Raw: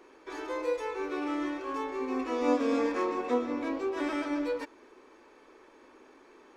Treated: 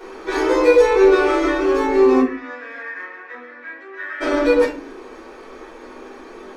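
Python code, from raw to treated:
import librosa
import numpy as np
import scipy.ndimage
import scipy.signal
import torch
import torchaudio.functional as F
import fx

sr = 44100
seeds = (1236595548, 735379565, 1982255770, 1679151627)

y = fx.rider(x, sr, range_db=4, speed_s=2.0)
y = fx.bandpass_q(y, sr, hz=1800.0, q=7.1, at=(2.19, 4.2), fade=0.02)
y = fx.room_shoebox(y, sr, seeds[0], volume_m3=210.0, walls='furnished', distance_m=4.7)
y = y * librosa.db_to_amplitude(7.5)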